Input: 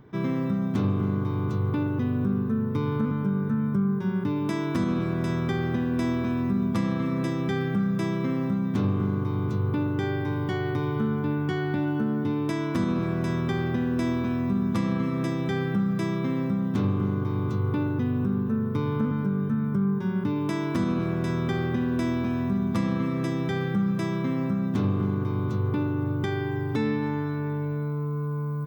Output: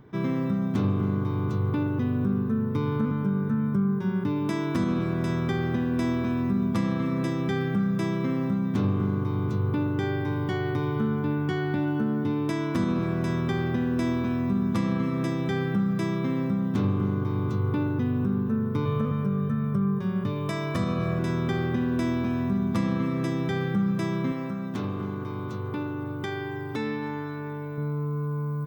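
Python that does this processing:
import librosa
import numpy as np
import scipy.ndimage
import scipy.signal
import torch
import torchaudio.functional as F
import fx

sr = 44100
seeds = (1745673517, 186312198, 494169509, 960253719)

y = fx.comb(x, sr, ms=1.7, depth=0.65, at=(18.85, 21.19))
y = fx.low_shelf(y, sr, hz=290.0, db=-9.0, at=(24.32, 27.78))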